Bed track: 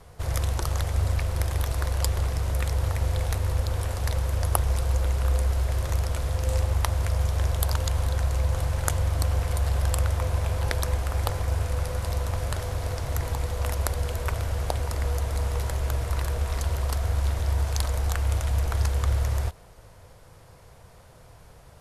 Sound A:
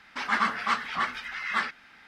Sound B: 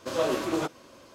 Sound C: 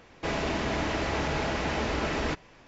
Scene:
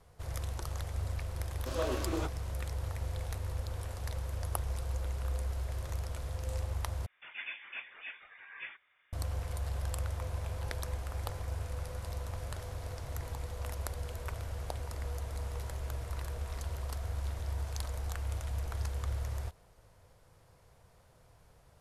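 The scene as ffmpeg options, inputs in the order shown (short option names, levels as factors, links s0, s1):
-filter_complex "[0:a]volume=0.266[s0];[1:a]lowpass=f=3100:t=q:w=0.5098,lowpass=f=3100:t=q:w=0.6013,lowpass=f=3100:t=q:w=0.9,lowpass=f=3100:t=q:w=2.563,afreqshift=-3700[s1];[s0]asplit=2[s2][s3];[s2]atrim=end=7.064[s4];[s1]atrim=end=2.07,asetpts=PTS-STARTPTS,volume=0.141[s5];[s3]atrim=start=9.126[s6];[2:a]atrim=end=1.14,asetpts=PTS-STARTPTS,volume=0.398,afade=t=in:d=0.004:c=hsin,afade=t=out:st=1.136:d=0.004:c=hsin,adelay=1600[s7];[s4][s5]acrossfade=d=0.004:c1=hsin:c2=hsin[s8];[s8][s6]acrossfade=d=0.004:c1=hsin:c2=hsin[s9];[s9][s7]amix=inputs=2:normalize=0"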